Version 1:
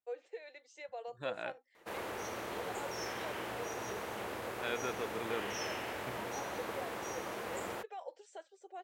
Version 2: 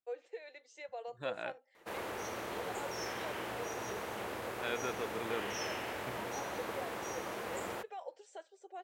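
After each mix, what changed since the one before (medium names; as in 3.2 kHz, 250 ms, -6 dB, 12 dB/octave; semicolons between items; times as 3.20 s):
reverb: on, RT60 1.7 s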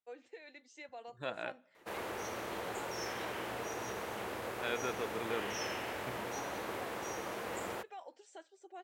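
first voice: add resonant low shelf 320 Hz +13.5 dB, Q 3; second voice: send on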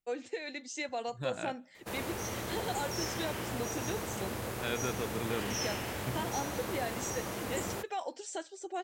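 first voice +11.5 dB; master: add tone controls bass +13 dB, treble +9 dB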